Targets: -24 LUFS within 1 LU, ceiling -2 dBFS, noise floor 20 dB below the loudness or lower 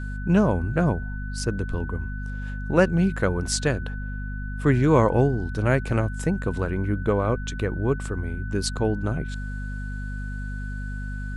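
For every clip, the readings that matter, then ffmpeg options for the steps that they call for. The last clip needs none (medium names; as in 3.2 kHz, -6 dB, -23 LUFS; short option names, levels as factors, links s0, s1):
hum 50 Hz; highest harmonic 250 Hz; hum level -29 dBFS; steady tone 1.5 kHz; tone level -39 dBFS; loudness -25.5 LUFS; peak level -5.0 dBFS; loudness target -24.0 LUFS
-> -af "bandreject=f=50:t=h:w=6,bandreject=f=100:t=h:w=6,bandreject=f=150:t=h:w=6,bandreject=f=200:t=h:w=6,bandreject=f=250:t=h:w=6"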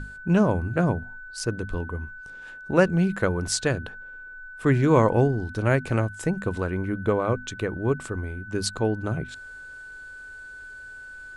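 hum not found; steady tone 1.5 kHz; tone level -39 dBFS
-> -af "bandreject=f=1500:w=30"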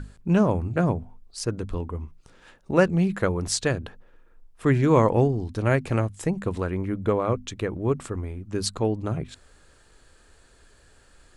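steady tone not found; loudness -25.0 LUFS; peak level -5.5 dBFS; loudness target -24.0 LUFS
-> -af "volume=1.12"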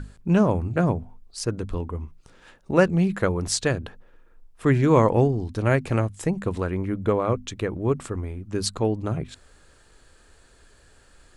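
loudness -24.0 LUFS; peak level -4.5 dBFS; noise floor -56 dBFS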